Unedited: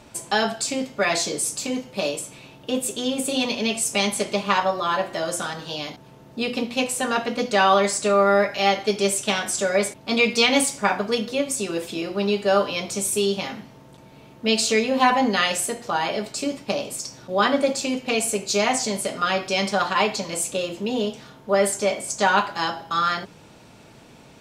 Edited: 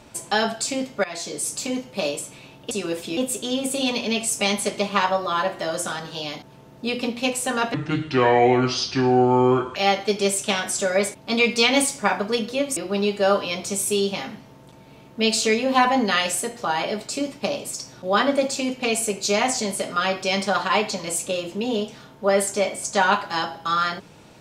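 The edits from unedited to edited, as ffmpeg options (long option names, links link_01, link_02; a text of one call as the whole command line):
ffmpeg -i in.wav -filter_complex "[0:a]asplit=7[link_01][link_02][link_03][link_04][link_05][link_06][link_07];[link_01]atrim=end=1.04,asetpts=PTS-STARTPTS,afade=type=out:start_time=1.036:duration=0.004:curve=hsin:silence=0.149624[link_08];[link_02]atrim=start=1.04:end=2.712,asetpts=PTS-STARTPTS,afade=type=in:duration=0.52:silence=0.149624[link_09];[link_03]atrim=start=11.558:end=12.022[link_10];[link_04]atrim=start=2.708:end=7.284[link_11];[link_05]atrim=start=7.28:end=8.55,asetpts=PTS-STARTPTS,asetrate=27783,aresample=44100[link_12];[link_06]atrim=start=8.546:end=11.562[link_13];[link_07]atrim=start=12.018[link_14];[link_08][link_09]concat=n=2:v=0:a=1[link_15];[link_15][link_10]acrossfade=duration=0.004:curve1=hsin:curve2=hsin[link_16];[link_16][link_11]acrossfade=duration=0.004:curve1=hsin:curve2=hsin[link_17];[link_17][link_12]acrossfade=duration=0.004:curve1=hsin:curve2=hsin[link_18];[link_18][link_13]acrossfade=duration=0.004:curve1=hsin:curve2=hsin[link_19];[link_19][link_14]acrossfade=duration=0.004:curve1=hsin:curve2=hsin" out.wav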